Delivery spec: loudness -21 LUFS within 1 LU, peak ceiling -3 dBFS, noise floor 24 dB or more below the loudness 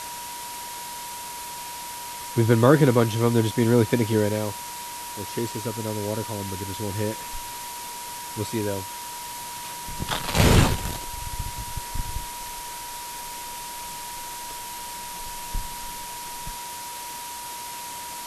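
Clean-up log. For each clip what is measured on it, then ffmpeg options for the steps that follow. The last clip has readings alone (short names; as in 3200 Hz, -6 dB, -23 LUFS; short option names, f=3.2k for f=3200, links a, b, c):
steady tone 960 Hz; tone level -36 dBFS; noise floor -36 dBFS; noise floor target -51 dBFS; loudness -27.0 LUFS; peak -3.5 dBFS; loudness target -21.0 LUFS
-> -af "bandreject=f=960:w=30"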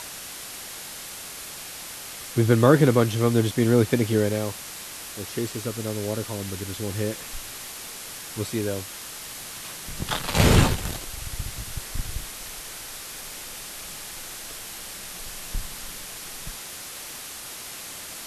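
steady tone none; noise floor -38 dBFS; noise floor target -51 dBFS
-> -af "afftdn=nr=13:nf=-38"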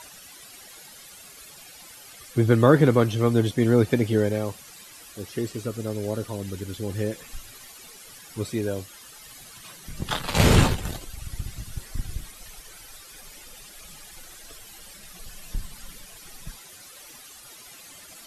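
noise floor -47 dBFS; noise floor target -48 dBFS
-> -af "afftdn=nr=6:nf=-47"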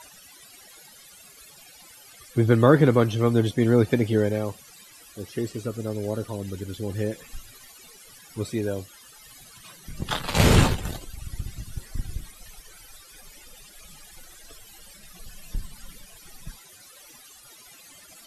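noise floor -50 dBFS; loudness -24.0 LUFS; peak -4.0 dBFS; loudness target -21.0 LUFS
-> -af "volume=3dB,alimiter=limit=-3dB:level=0:latency=1"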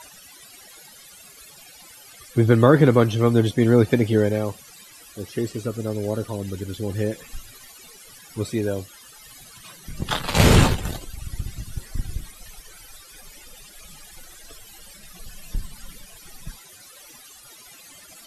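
loudness -21.5 LUFS; peak -3.0 dBFS; noise floor -47 dBFS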